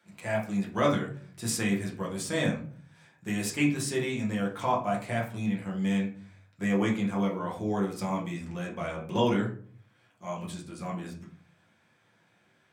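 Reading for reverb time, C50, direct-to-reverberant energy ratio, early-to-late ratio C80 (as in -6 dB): no single decay rate, 8.0 dB, -3.5 dB, 13.0 dB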